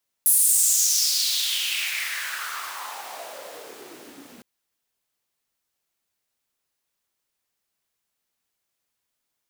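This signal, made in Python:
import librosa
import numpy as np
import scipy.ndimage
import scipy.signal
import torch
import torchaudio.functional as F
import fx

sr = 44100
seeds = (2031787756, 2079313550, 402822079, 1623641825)

y = fx.riser_noise(sr, seeds[0], length_s=4.16, colour='pink', kind='highpass', start_hz=11000.0, end_hz=220.0, q=3.8, swell_db=-34, law='exponential')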